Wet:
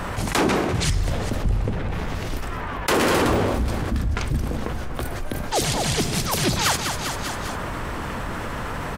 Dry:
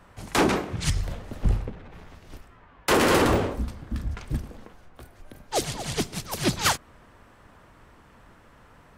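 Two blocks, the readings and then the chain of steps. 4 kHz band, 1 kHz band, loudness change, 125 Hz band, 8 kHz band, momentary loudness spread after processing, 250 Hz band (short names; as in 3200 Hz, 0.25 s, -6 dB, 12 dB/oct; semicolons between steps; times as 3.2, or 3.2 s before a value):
+4.5 dB, +4.0 dB, +2.0 dB, +6.0 dB, +5.0 dB, 10 LU, +3.5 dB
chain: feedback echo 0.199 s, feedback 54%, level -19 dB; fast leveller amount 70%; gain -1 dB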